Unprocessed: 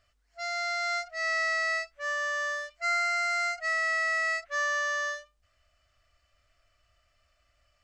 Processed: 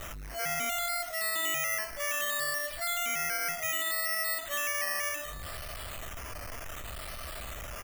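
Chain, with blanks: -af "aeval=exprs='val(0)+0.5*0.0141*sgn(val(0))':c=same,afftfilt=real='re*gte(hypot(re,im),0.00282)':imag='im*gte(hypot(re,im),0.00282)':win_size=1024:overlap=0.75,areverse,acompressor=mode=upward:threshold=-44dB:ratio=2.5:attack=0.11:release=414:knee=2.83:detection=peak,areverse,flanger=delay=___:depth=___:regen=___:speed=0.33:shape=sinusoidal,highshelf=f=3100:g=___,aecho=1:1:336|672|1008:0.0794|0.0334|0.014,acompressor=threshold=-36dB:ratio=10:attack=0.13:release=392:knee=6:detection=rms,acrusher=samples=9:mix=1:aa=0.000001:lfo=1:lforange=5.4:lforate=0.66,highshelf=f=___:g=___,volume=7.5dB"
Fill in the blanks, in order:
9, 8.9, 81, -5.5, 8900, 10.5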